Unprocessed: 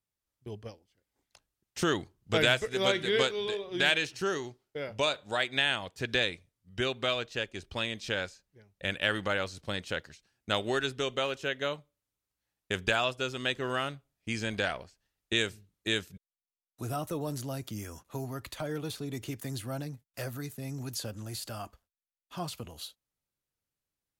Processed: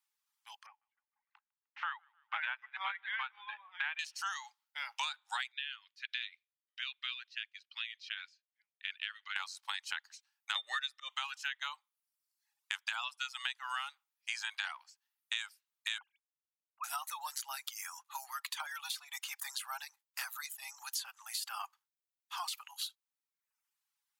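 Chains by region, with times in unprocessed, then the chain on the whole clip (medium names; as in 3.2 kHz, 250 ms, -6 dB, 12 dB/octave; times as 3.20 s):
0.66–3.99 s: low-pass 2.3 kHz 24 dB/octave + feedback delay 152 ms, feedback 52%, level -21 dB + upward expansion, over -35 dBFS
5.52–9.36 s: Bessel high-pass 2.8 kHz, order 4 + distance through air 310 m
10.55–11.10 s: resonant low shelf 720 Hz +8.5 dB, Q 3 + slow attack 175 ms + small resonant body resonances 260/1200/1800/3600 Hz, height 16 dB, ringing for 20 ms
15.98–16.84 s: formants replaced by sine waves + band-stop 1.8 kHz, Q 6.6
whole clip: reverb removal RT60 0.82 s; Chebyshev high-pass 830 Hz, order 6; compression 6:1, threshold -41 dBFS; trim +6 dB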